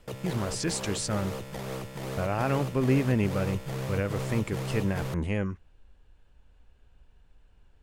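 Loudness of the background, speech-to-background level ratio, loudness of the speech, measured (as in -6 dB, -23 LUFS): -36.0 LUFS, 6.0 dB, -30.0 LUFS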